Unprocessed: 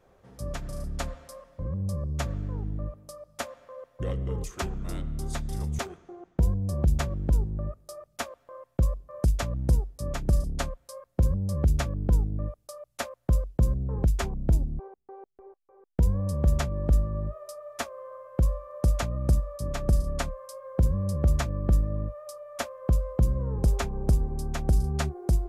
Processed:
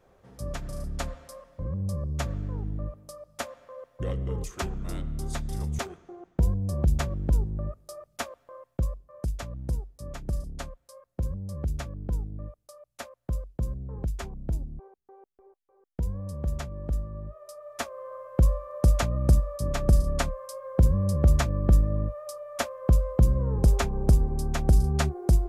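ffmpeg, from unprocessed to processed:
ffmpeg -i in.wav -af "volume=10dB,afade=type=out:start_time=8.39:duration=0.68:silence=0.446684,afade=type=in:start_time=17.28:duration=0.93:silence=0.316228" out.wav

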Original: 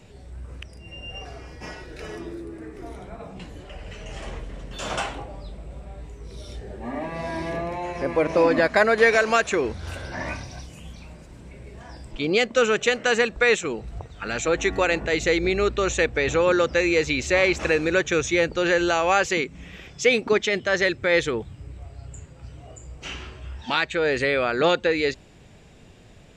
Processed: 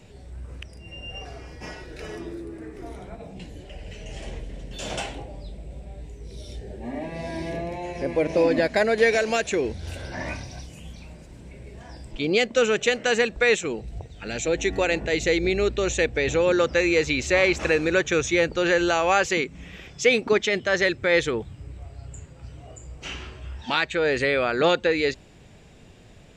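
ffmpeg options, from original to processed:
ffmpeg -i in.wav -af "asetnsamples=nb_out_samples=441:pad=0,asendcmd='3.15 equalizer g -13.5;9.99 equalizer g -5.5;13.81 equalizer g -14.5;14.73 equalizer g -8;16.59 equalizer g -1',equalizer=frequency=1200:width_type=o:width=0.75:gain=-2.5" out.wav

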